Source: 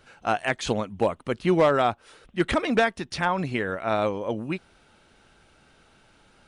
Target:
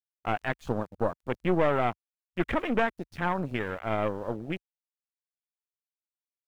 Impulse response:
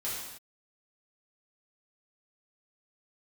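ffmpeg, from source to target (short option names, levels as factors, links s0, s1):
-af "aeval=exprs='val(0)*gte(abs(val(0)),0.0211)':c=same,aeval=exprs='(tanh(7.94*val(0)+0.75)-tanh(0.75))/7.94':c=same,afwtdn=0.0141"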